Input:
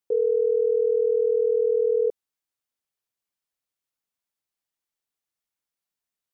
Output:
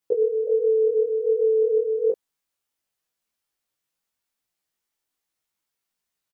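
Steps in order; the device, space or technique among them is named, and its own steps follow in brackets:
0:00.47–0:01.69: notch filter 560 Hz, Q 12
double-tracked vocal (double-tracking delay 22 ms −2 dB; chorus effect 1.3 Hz, delay 15.5 ms, depth 4.3 ms)
level +6.5 dB

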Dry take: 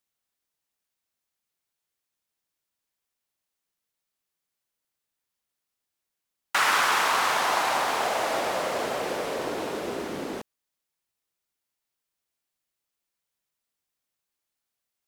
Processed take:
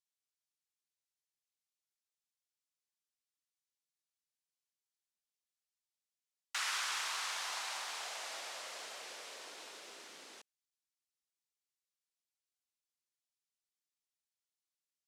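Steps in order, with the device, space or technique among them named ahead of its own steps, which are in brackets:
piezo pickup straight into a mixer (low-pass filter 6,500 Hz 12 dB per octave; first difference)
level −3.5 dB

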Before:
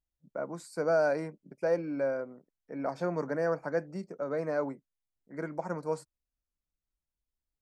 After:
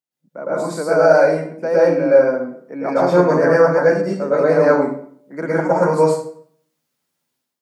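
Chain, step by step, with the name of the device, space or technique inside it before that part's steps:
far laptop microphone (convolution reverb RT60 0.55 s, pre-delay 105 ms, DRR −7.5 dB; high-pass filter 160 Hz 24 dB per octave; automatic gain control gain up to 12.5 dB)

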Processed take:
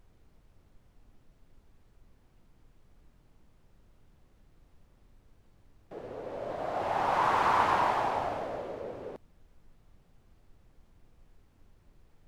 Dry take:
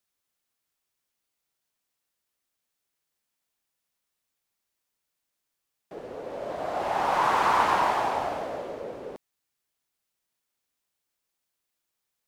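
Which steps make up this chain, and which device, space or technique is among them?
car interior (parametric band 100 Hz +7 dB 0.7 octaves; high-shelf EQ 4,800 Hz −6.5 dB; brown noise bed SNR 22 dB)
level −3 dB

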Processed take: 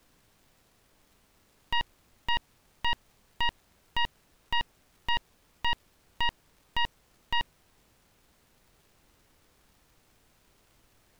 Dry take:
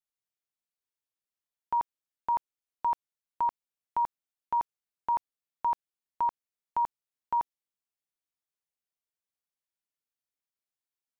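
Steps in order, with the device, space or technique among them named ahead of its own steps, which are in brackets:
record under a worn stylus (stylus tracing distortion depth 0.37 ms; surface crackle; pink noise bed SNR 30 dB)

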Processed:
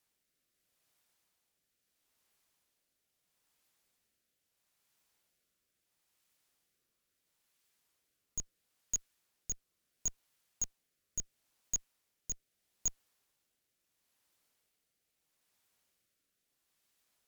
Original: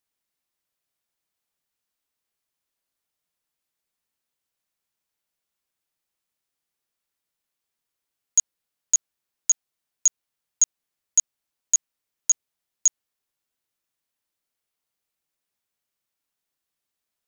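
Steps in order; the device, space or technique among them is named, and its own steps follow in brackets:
overdriven rotary cabinet (tube saturation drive 37 dB, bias 0.5; rotating-speaker cabinet horn 0.75 Hz)
level +9.5 dB

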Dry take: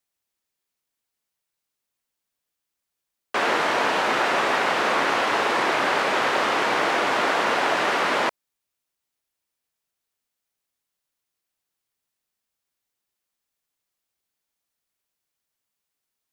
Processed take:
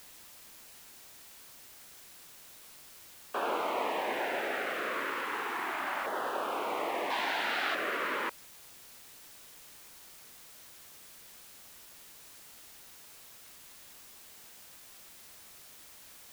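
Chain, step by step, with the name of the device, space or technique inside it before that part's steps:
shortwave radio (band-pass filter 280–2,600 Hz; amplitude tremolo 0.26 Hz, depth 33%; auto-filter notch saw down 0.33 Hz 420–2,500 Hz; white noise bed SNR 14 dB)
0:07.10–0:07.75: graphic EQ with 10 bands 500 Hz −11 dB, 1,000 Hz +7 dB, 4,000 Hz +10 dB
level −7.5 dB

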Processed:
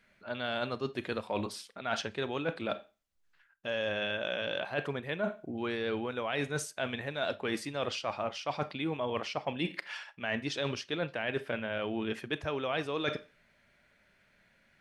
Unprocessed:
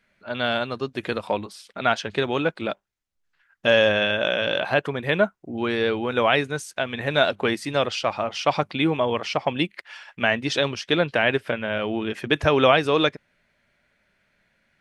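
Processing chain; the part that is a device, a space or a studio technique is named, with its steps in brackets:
four-comb reverb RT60 0.31 s, combs from 28 ms, DRR 16.5 dB
compression on the reversed sound (reversed playback; downward compressor 10 to 1, threshold −30 dBFS, peak gain reduction 18.5 dB; reversed playback)

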